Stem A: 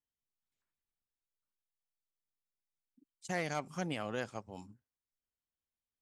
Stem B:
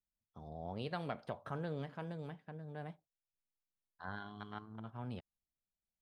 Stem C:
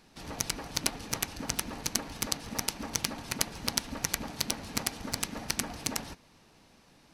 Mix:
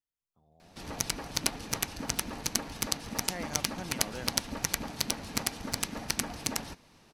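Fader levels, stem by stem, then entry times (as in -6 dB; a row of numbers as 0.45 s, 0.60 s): -4.5 dB, -17.0 dB, +0.5 dB; 0.00 s, 0.00 s, 0.60 s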